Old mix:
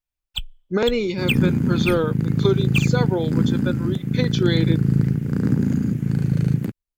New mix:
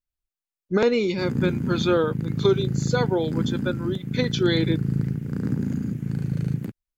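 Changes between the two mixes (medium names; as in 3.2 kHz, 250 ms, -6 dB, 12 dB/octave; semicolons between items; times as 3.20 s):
first sound: muted; second sound -6.0 dB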